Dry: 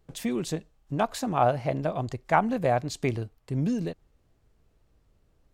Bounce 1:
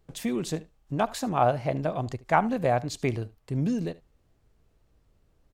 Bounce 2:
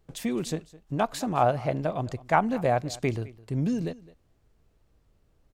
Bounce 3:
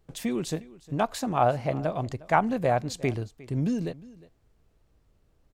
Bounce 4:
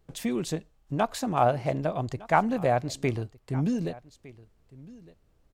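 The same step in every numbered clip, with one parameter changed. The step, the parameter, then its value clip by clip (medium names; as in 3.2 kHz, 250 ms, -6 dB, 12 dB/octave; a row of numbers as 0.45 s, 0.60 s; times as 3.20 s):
delay, time: 74 ms, 211 ms, 357 ms, 1209 ms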